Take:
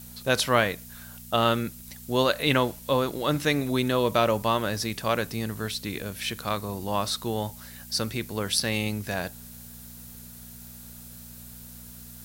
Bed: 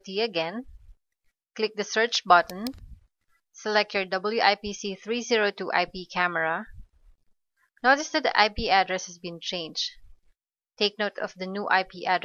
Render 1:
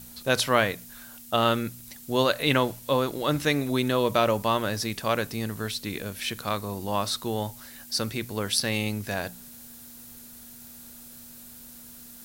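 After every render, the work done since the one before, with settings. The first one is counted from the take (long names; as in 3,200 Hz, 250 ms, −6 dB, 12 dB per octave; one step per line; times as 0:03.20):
hum removal 60 Hz, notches 3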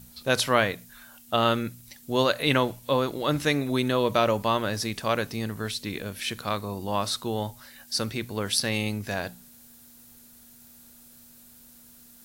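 noise reduction from a noise print 6 dB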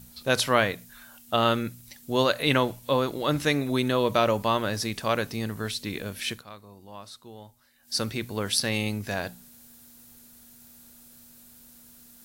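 0:06.31–0:07.95: duck −16 dB, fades 0.13 s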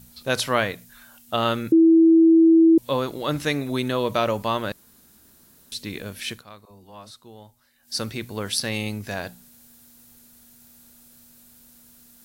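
0:01.72–0:02.78: beep over 327 Hz −10.5 dBFS
0:04.72–0:05.72: fill with room tone
0:06.65–0:07.11: all-pass dispersion lows, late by 55 ms, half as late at 380 Hz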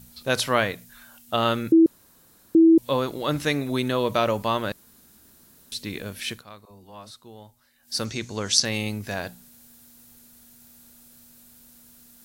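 0:01.86–0:02.55: fill with room tone
0:08.05–0:08.65: low-pass with resonance 6,500 Hz, resonance Q 4.8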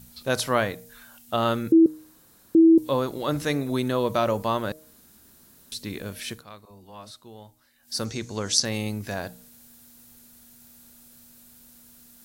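hum removal 155.3 Hz, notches 5
dynamic equaliser 2,700 Hz, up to −6 dB, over −41 dBFS, Q 0.99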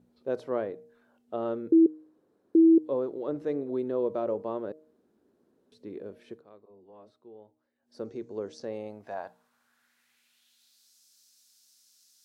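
band-pass filter sweep 410 Hz → 5,300 Hz, 0:08.57–0:10.93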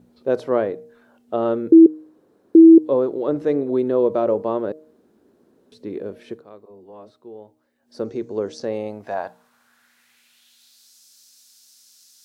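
level +10.5 dB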